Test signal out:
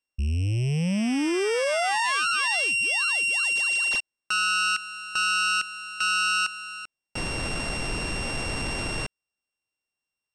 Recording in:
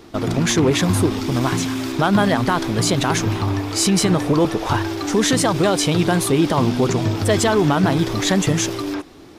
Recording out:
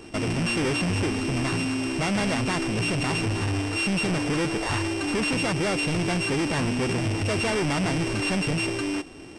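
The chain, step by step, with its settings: sample sorter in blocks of 16 samples; soft clip -22.5 dBFS; downsampling 22050 Hz

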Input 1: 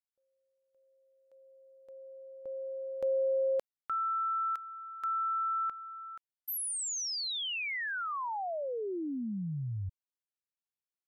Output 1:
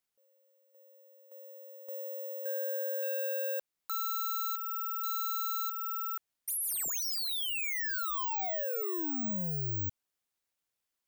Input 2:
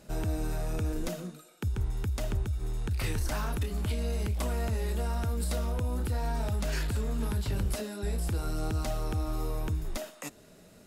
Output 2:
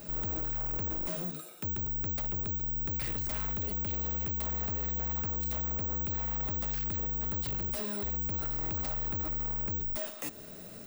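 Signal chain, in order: in parallel at 0 dB: compressor 16:1, threshold -40 dBFS; on the sum: hard clip -36 dBFS; careless resampling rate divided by 2×, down none, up zero stuff

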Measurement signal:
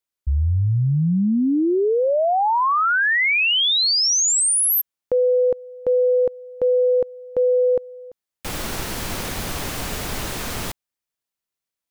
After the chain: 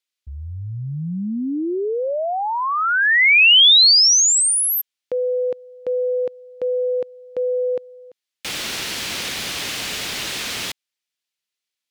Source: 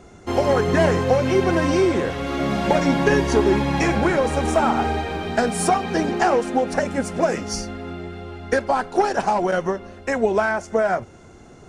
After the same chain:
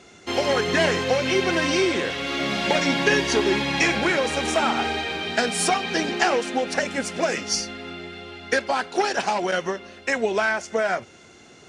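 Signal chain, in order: weighting filter D; gain -3.5 dB

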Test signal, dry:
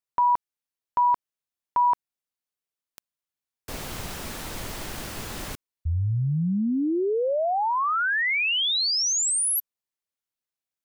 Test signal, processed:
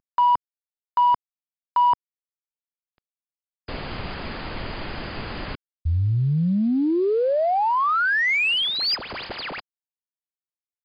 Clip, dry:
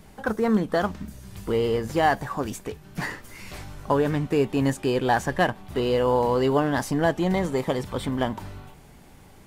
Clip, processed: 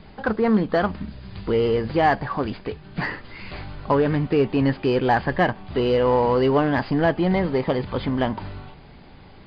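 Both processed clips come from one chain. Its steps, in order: CVSD 64 kbps; dynamic EQ 3800 Hz, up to -7 dB, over -53 dBFS, Q 4.3; brick-wall FIR low-pass 5000 Hz; in parallel at -4 dB: soft clip -20.5 dBFS

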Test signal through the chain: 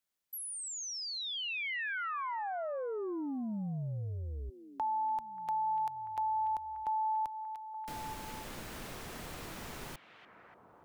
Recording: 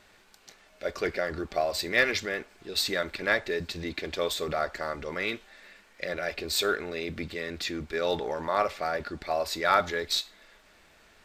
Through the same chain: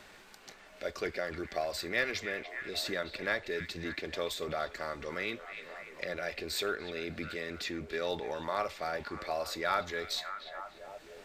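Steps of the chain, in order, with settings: delay with a stepping band-pass 0.292 s, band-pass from 2500 Hz, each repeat -0.7 oct, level -10 dB; three-band squash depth 40%; gain -6 dB

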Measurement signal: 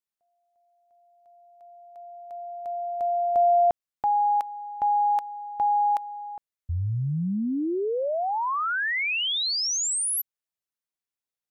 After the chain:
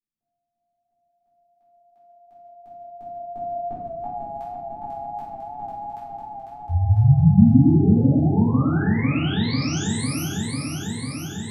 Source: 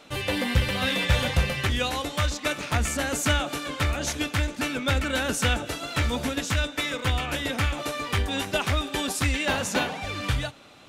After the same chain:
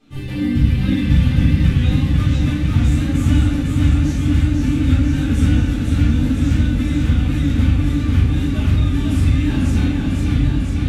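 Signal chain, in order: resonant low shelf 380 Hz +14 dB, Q 1.5; shoebox room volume 290 m³, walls mixed, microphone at 3.8 m; warbling echo 0.498 s, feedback 77%, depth 78 cents, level -4 dB; gain -17.5 dB

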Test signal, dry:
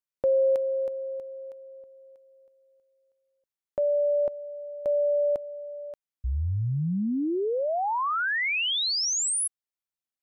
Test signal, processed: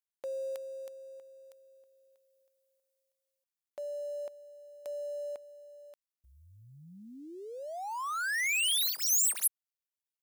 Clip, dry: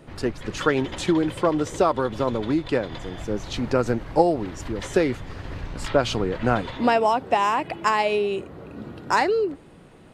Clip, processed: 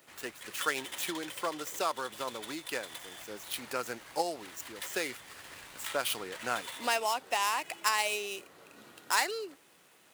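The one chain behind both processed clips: median filter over 9 samples; differentiator; gain +7.5 dB

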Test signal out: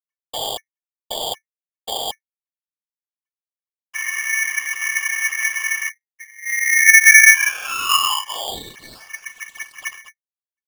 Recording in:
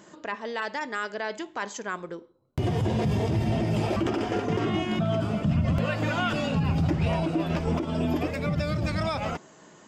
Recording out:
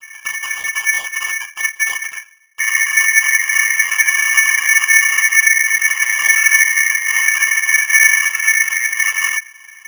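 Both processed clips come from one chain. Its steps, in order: median filter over 41 samples; low shelf 420 Hz +12 dB; compressor, threshold -18 dBFS; noise vocoder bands 16; double band-pass 470 Hz, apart 2 oct; maximiser +20 dB; polarity switched at an audio rate 2000 Hz; gain -1 dB

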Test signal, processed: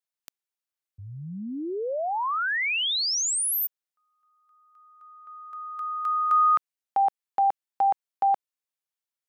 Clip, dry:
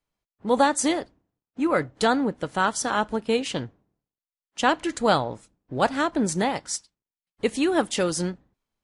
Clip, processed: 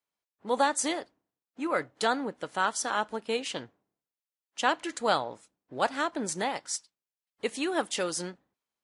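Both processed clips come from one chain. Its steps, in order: HPF 510 Hz 6 dB/oct; gain -3.5 dB

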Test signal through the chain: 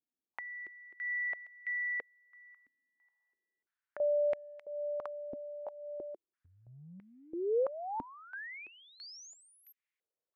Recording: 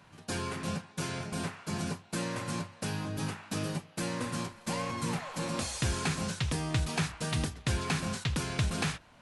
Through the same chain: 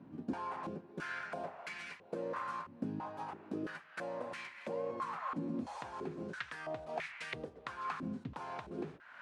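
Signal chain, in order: compressor 6:1, threshold -43 dBFS; stepped band-pass 3 Hz 270–2100 Hz; gain +16 dB

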